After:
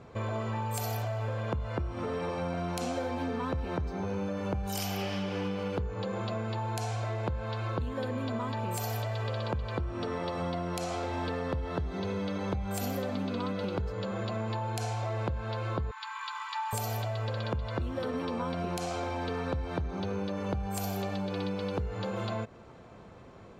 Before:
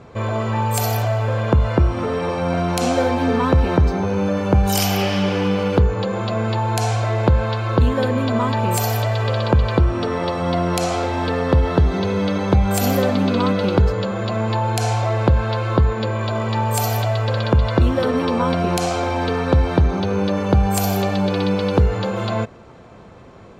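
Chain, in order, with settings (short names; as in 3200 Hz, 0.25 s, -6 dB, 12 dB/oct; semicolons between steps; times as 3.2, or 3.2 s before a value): 15.91–16.73 Chebyshev high-pass 850 Hz, order 8; compressor, threshold -22 dBFS, peak gain reduction 11.5 dB; gain -8 dB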